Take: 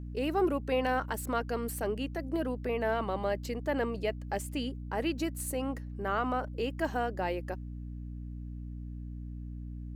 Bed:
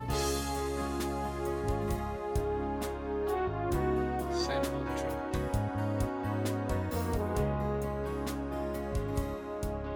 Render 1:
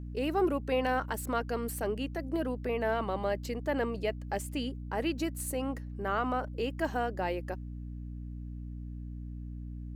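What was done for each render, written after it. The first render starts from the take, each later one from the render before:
no processing that can be heard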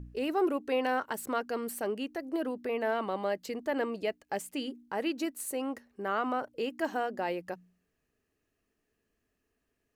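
hum removal 60 Hz, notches 5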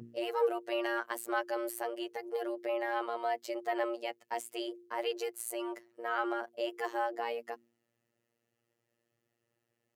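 frequency shifter +110 Hz
phases set to zero 117 Hz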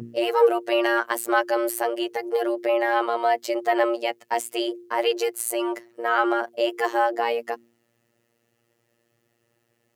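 level +12 dB

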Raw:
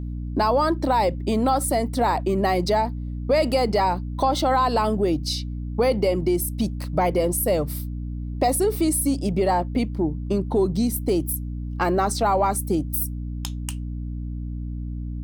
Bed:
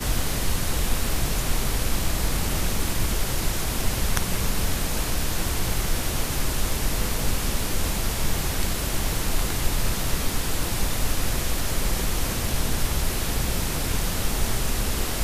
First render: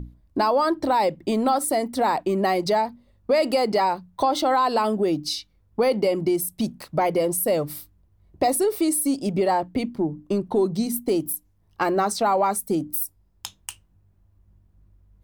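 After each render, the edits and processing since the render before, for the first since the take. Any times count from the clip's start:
mains-hum notches 60/120/180/240/300 Hz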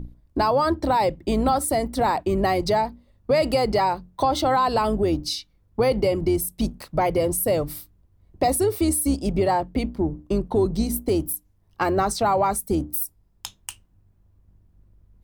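sub-octave generator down 2 octaves, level −4 dB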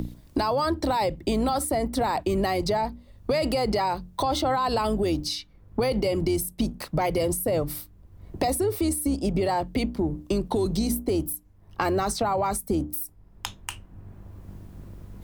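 brickwall limiter −17 dBFS, peak gain reduction 7 dB
multiband upward and downward compressor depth 70%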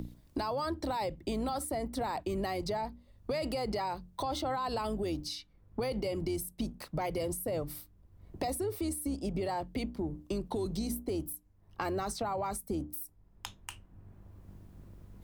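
level −9.5 dB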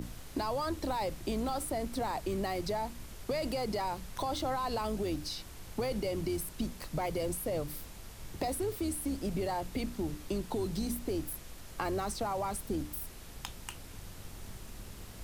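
mix in bed −23 dB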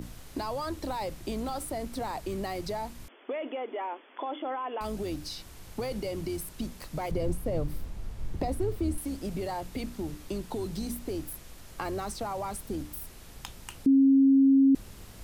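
0:03.08–0:04.81: linear-phase brick-wall band-pass 240–3,500 Hz
0:07.11–0:08.98: spectral tilt −2.5 dB per octave
0:13.86–0:14.75: beep over 271 Hz −16.5 dBFS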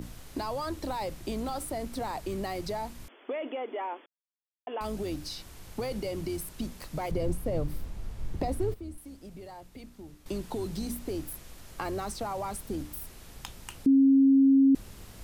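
0:04.06–0:04.67: silence
0:08.74–0:10.26: clip gain −11.5 dB

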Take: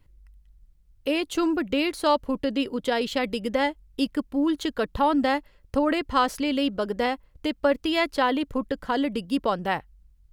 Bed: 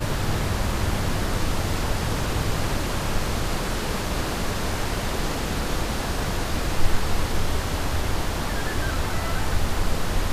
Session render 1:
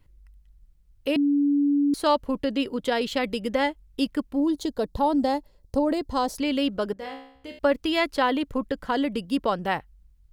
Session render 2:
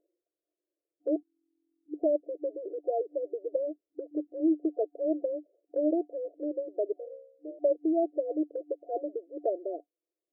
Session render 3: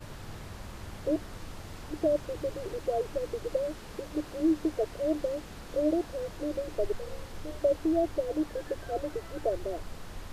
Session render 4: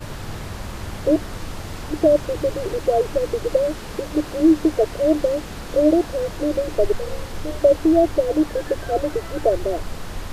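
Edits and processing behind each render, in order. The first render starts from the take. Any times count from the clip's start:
0:01.16–0:01.94: beep over 286 Hz −18 dBFS; 0:04.40–0:06.39: flat-topped bell 1,900 Hz −11.5 dB; 0:06.93–0:07.59: tuned comb filter 67 Hz, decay 0.65 s, mix 90%
brick-wall band-pass 300–720 Hz; dynamic equaliser 510 Hz, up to −4 dB, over −38 dBFS, Q 2.9
mix in bed −18.5 dB
level +11.5 dB

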